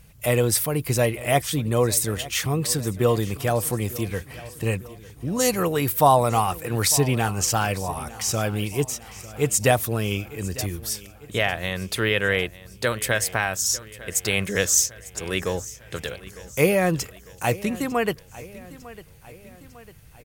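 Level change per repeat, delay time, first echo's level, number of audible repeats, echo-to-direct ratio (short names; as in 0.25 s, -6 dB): -5.5 dB, 0.901 s, -18.5 dB, 3, -17.0 dB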